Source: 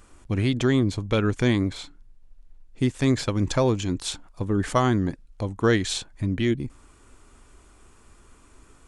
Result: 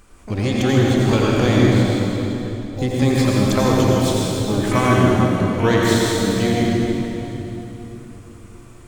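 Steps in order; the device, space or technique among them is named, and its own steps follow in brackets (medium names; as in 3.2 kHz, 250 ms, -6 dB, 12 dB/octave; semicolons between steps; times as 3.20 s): shimmer-style reverb (harmony voices +12 st -9 dB; reverberation RT60 3.5 s, pre-delay 76 ms, DRR -4.5 dB); trim +1 dB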